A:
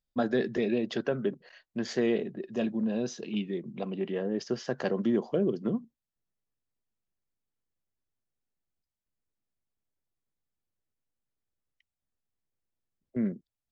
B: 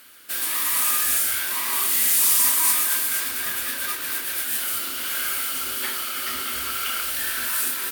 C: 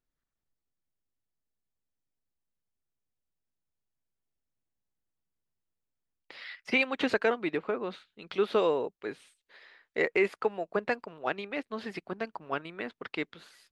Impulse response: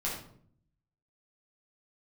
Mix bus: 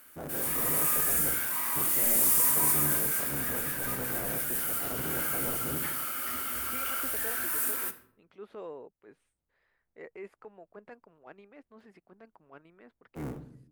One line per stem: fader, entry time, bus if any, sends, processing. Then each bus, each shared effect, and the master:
−5.0 dB, 0.00 s, send −10.5 dB, sub-harmonics by changed cycles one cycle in 3, inverted; brickwall limiter −26.5 dBFS, peak gain reduction 11 dB
−5.0 dB, 0.00 s, send −12.5 dB, no processing
−14.5 dB, 0.00 s, no send, no processing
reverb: on, RT60 0.60 s, pre-delay 7 ms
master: parametric band 3,900 Hz −12.5 dB 1.5 octaves; transient designer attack −6 dB, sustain +1 dB

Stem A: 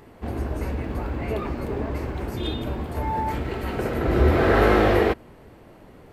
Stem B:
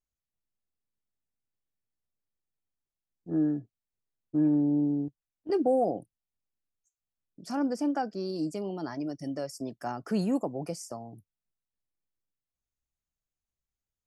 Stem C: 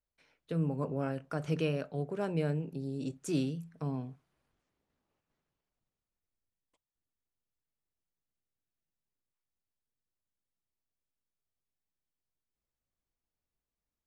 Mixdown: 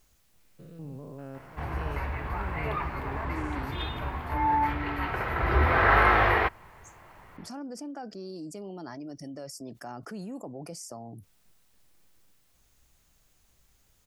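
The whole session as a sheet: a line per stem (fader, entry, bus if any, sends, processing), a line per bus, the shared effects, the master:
−4.0 dB, 1.35 s, no send, octave-band graphic EQ 250/500/1,000/2,000/8,000 Hz −11/−6/+9/+7/−12 dB
−14.0 dB, 0.00 s, no send, envelope flattener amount 70%
−7.0 dB, 0.20 s, no send, spectrum averaged block by block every 200 ms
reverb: not used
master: no processing

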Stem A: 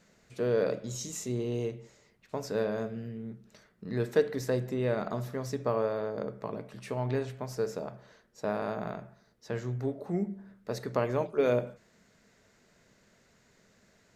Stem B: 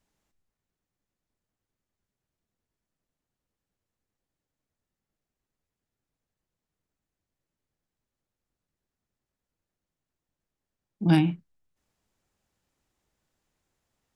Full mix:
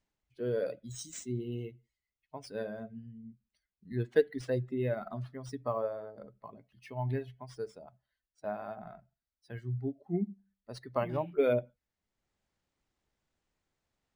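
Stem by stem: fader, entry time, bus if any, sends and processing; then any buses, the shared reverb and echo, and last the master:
+1.5 dB, 0.00 s, no send, spectral dynamics exaggerated over time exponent 2
−4.5 dB, 0.00 s, no send, brickwall limiter −21.5 dBFS, peak gain reduction 11.5 dB; automatic ducking −12 dB, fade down 0.40 s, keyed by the first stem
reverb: not used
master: linearly interpolated sample-rate reduction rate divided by 3×

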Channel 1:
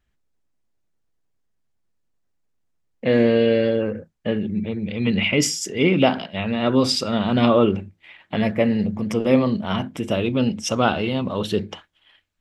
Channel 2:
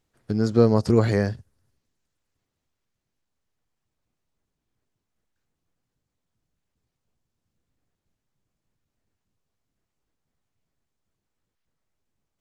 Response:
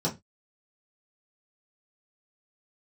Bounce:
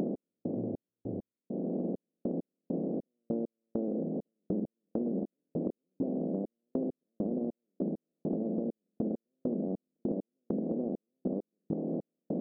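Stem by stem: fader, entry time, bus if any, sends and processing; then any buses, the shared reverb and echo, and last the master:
+2.0 dB, 0.00 s, no send, compressor on every frequency bin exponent 0.2; elliptic high-pass filter 170 Hz; downward compressor, threshold −17 dBFS, peak gain reduction 11 dB; automatic ducking −16 dB, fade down 1.95 s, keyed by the second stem
−19.0 dB, 0.00 s, no send, no processing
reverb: not used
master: Gaussian smoothing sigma 19 samples; gate pattern "x..xx..x..xxx.." 100 BPM −60 dB; downward compressor, threshold −30 dBFS, peak gain reduction 11 dB

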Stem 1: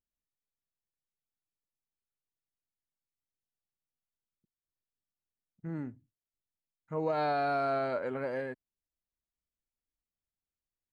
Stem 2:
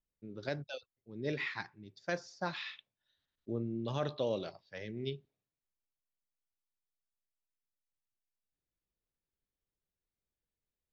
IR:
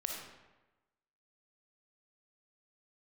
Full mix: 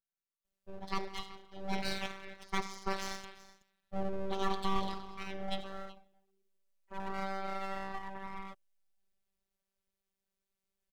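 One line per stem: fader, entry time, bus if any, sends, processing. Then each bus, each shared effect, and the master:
−1.5 dB, 0.00 s, no send, no echo send, ring modulator whose carrier an LFO sweeps 520 Hz, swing 35%, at 0.33 Hz
+1.5 dB, 0.45 s, send −4 dB, echo send −14.5 dB, no processing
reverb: on, RT60 1.1 s, pre-delay 15 ms
echo: single-tap delay 375 ms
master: phases set to zero 193 Hz; full-wave rectification

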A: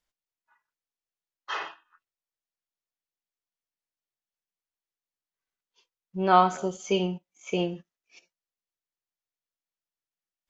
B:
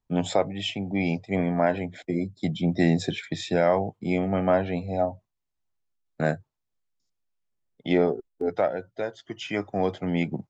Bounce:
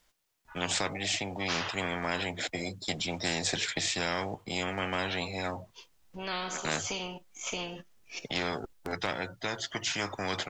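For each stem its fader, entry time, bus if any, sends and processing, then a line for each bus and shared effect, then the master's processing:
−7.0 dB, 0.00 s, no send, downward compressor 1.5 to 1, threshold −44 dBFS, peak gain reduction 11.5 dB
−5.0 dB, 0.45 s, no send, no processing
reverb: not used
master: every bin compressed towards the loudest bin 4 to 1

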